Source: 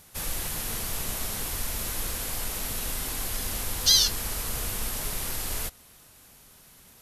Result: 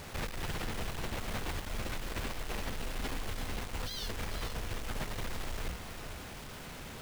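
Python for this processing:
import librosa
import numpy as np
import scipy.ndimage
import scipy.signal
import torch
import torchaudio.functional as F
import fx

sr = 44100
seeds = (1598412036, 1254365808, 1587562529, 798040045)

p1 = scipy.signal.sosfilt(scipy.signal.butter(2, 2400.0, 'lowpass', fs=sr, output='sos'), x)
p2 = fx.peak_eq(p1, sr, hz=1200.0, db=-2.5, octaves=1.4)
p3 = fx.hum_notches(p2, sr, base_hz=60, count=4)
p4 = fx.over_compress(p3, sr, threshold_db=-41.0, ratio=-1.0)
p5 = 10.0 ** (-35.5 / 20.0) * np.tanh(p4 / 10.0 ** (-35.5 / 20.0))
p6 = fx.quant_companded(p5, sr, bits=4)
p7 = p6 + fx.echo_single(p6, sr, ms=450, db=-9.5, dry=0)
y = F.gain(torch.from_numpy(p7), 5.5).numpy()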